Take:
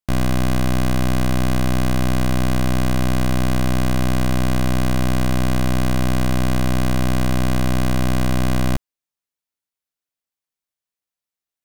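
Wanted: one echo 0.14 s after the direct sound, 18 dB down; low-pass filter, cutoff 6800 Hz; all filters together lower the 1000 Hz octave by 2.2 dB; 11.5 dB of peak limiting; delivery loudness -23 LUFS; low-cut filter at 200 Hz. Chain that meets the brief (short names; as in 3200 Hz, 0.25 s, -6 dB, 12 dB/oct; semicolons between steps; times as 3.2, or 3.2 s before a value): HPF 200 Hz; LPF 6800 Hz; bell 1000 Hz -3 dB; limiter -21 dBFS; echo 0.14 s -18 dB; gain +13 dB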